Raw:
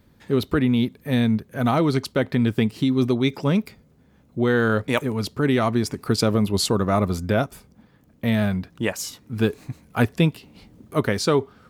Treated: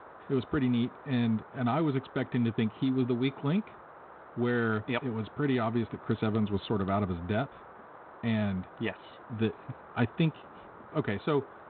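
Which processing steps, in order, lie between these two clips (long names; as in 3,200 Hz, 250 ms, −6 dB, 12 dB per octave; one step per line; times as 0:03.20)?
notch comb filter 540 Hz
noise in a band 320–1,400 Hz −42 dBFS
level −8 dB
G.726 32 kbit/s 8,000 Hz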